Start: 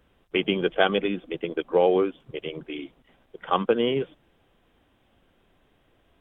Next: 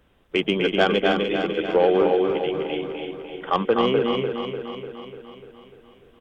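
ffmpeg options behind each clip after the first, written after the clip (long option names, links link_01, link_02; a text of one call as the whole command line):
ffmpeg -i in.wav -filter_complex "[0:a]asplit=2[link_01][link_02];[link_02]aecho=0:1:251:0.596[link_03];[link_01][link_03]amix=inputs=2:normalize=0,asoftclip=type=tanh:threshold=-10dB,asplit=2[link_04][link_05];[link_05]aecho=0:1:297|594|891|1188|1485|1782|2079|2376:0.447|0.264|0.155|0.0917|0.0541|0.0319|0.0188|0.0111[link_06];[link_04][link_06]amix=inputs=2:normalize=0,volume=2.5dB" out.wav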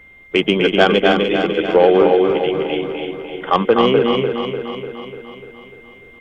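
ffmpeg -i in.wav -af "aeval=exprs='val(0)+0.00355*sin(2*PI*2100*n/s)':channel_layout=same,volume=6.5dB" out.wav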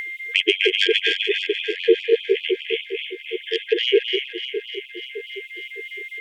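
ffmpeg -i in.wav -af "afftfilt=real='re*(1-between(b*sr/4096,470,1600))':imag='im*(1-between(b*sr/4096,470,1600))':win_size=4096:overlap=0.75,acompressor=mode=upward:threshold=-23dB:ratio=2.5,afftfilt=real='re*gte(b*sr/1024,320*pow(2400/320,0.5+0.5*sin(2*PI*4.9*pts/sr)))':imag='im*gte(b*sr/1024,320*pow(2400/320,0.5+0.5*sin(2*PI*4.9*pts/sr)))':win_size=1024:overlap=0.75,volume=2.5dB" out.wav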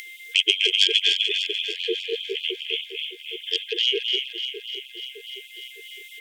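ffmpeg -i in.wav -af "aexciter=amount=11.2:drive=1.3:freq=2800,volume=-12dB" out.wav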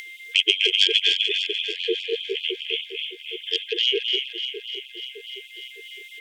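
ffmpeg -i in.wav -af "highshelf=frequency=6300:gain=-9,volume=2dB" out.wav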